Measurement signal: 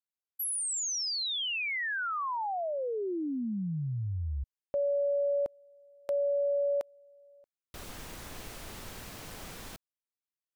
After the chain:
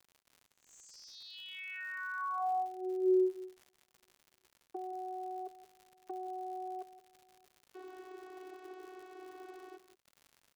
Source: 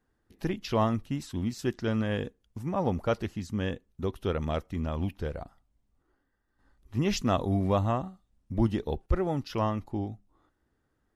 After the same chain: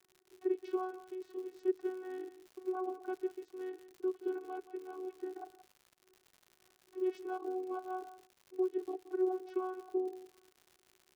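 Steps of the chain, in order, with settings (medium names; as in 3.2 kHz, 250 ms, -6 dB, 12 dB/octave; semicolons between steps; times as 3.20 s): low-pass 1 kHz 6 dB/octave; compression 2.5:1, threshold -34 dBFS; vocoder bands 16, saw 371 Hz; crackle 120 per s -48 dBFS; delay 174 ms -15 dB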